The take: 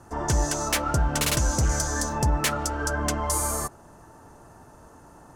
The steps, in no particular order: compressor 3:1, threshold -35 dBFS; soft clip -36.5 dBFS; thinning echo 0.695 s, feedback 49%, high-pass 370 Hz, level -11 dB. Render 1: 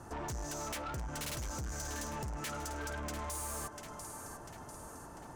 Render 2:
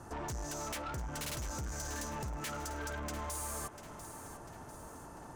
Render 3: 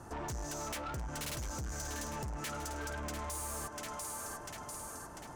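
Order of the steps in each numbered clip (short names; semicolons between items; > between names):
compressor > thinning echo > soft clip; compressor > soft clip > thinning echo; thinning echo > compressor > soft clip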